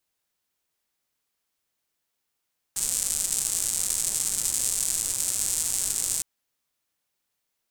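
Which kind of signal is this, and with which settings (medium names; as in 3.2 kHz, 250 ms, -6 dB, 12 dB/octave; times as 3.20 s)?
rain from filtered ticks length 3.46 s, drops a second 230, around 8 kHz, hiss -17 dB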